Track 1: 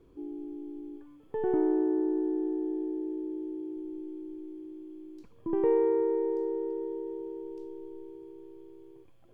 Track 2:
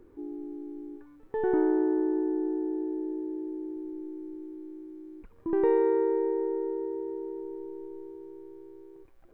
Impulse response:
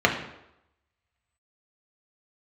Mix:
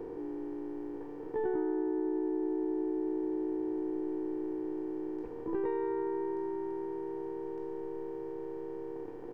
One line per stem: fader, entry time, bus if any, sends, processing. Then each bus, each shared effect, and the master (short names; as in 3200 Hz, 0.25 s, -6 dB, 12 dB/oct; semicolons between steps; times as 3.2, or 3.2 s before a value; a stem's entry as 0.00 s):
-12.0 dB, 0.00 s, no send, per-bin compression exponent 0.2
-3.5 dB, 17 ms, no send, notch 620 Hz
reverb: off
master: compressor 6:1, threshold -29 dBFS, peak gain reduction 8 dB